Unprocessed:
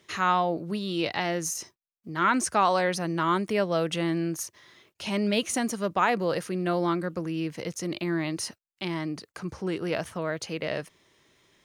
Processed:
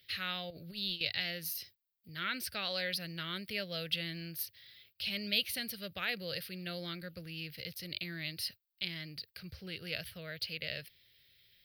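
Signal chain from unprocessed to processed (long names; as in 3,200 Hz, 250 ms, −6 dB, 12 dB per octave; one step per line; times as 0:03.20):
0:00.50–0:01.01: compressor whose output falls as the input rises −31 dBFS, ratio −0.5
drawn EQ curve 100 Hz 0 dB, 320 Hz −20 dB, 550 Hz −11 dB, 980 Hz −28 dB, 1,500 Hz −8 dB, 2,500 Hz +1 dB, 4,700 Hz +7 dB, 6,800 Hz −24 dB, 14,000 Hz +15 dB
level −3 dB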